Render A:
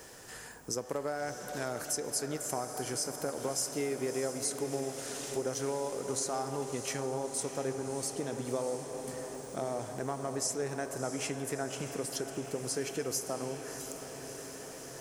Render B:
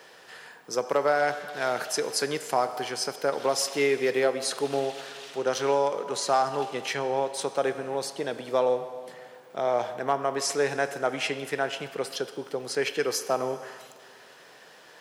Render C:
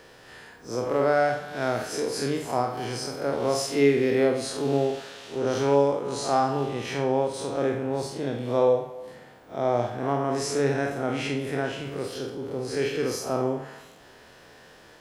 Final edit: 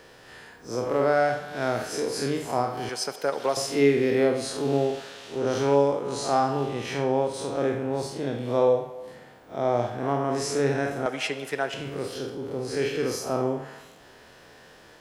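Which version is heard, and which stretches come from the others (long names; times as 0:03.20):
C
0:02.89–0:03.57: punch in from B
0:11.06–0:11.74: punch in from B
not used: A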